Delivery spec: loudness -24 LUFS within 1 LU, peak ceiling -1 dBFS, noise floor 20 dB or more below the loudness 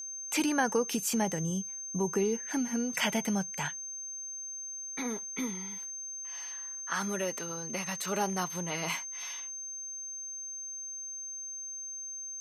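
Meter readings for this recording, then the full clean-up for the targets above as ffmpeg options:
steady tone 6.3 kHz; tone level -38 dBFS; loudness -33.5 LUFS; peak level -15.5 dBFS; loudness target -24.0 LUFS
-> -af "bandreject=f=6300:w=30"
-af "volume=2.99"

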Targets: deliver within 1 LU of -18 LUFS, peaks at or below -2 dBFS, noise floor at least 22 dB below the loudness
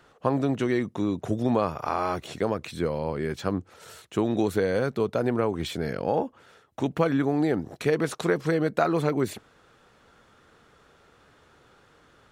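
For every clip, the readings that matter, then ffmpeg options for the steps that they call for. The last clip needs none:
loudness -27.0 LUFS; peak level -8.0 dBFS; loudness target -18.0 LUFS
-> -af "volume=2.82,alimiter=limit=0.794:level=0:latency=1"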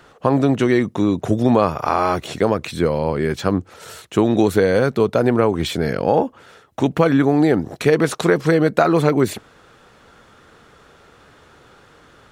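loudness -18.0 LUFS; peak level -2.0 dBFS; noise floor -50 dBFS

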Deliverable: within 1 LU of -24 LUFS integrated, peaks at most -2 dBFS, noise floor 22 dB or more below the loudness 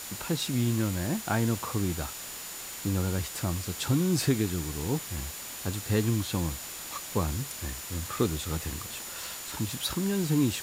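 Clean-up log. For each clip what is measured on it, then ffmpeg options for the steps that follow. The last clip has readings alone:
steady tone 7 kHz; tone level -45 dBFS; noise floor -40 dBFS; noise floor target -53 dBFS; loudness -30.5 LUFS; peak level -13.0 dBFS; loudness target -24.0 LUFS
-> -af "bandreject=f=7000:w=30"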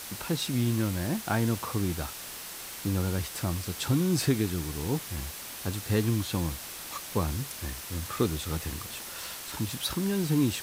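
steady tone not found; noise floor -41 dBFS; noise floor target -53 dBFS
-> -af "afftdn=nr=12:nf=-41"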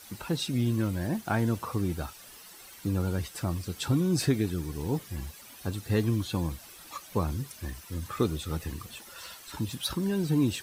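noise floor -50 dBFS; noise floor target -53 dBFS
-> -af "afftdn=nr=6:nf=-50"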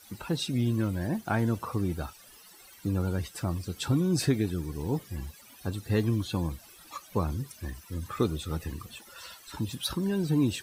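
noise floor -53 dBFS; loudness -31.0 LUFS; peak level -14.0 dBFS; loudness target -24.0 LUFS
-> -af "volume=2.24"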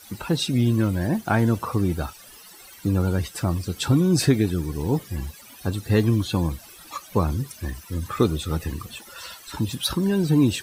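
loudness -24.0 LUFS; peak level -7.0 dBFS; noise floor -46 dBFS

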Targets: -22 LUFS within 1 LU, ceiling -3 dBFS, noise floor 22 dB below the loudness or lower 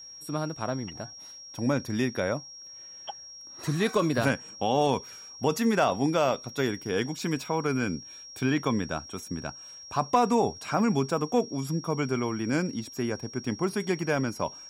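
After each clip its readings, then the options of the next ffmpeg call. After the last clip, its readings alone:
steady tone 5.6 kHz; tone level -43 dBFS; loudness -28.5 LUFS; peak level -11.0 dBFS; loudness target -22.0 LUFS
-> -af "bandreject=f=5600:w=30"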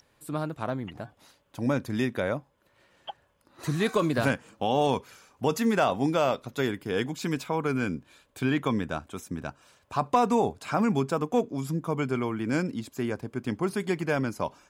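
steady tone not found; loudness -28.5 LUFS; peak level -10.5 dBFS; loudness target -22.0 LUFS
-> -af "volume=2.11"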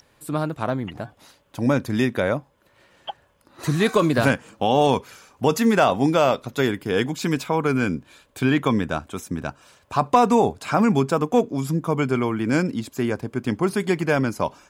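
loudness -22.0 LUFS; peak level -4.5 dBFS; noise floor -61 dBFS

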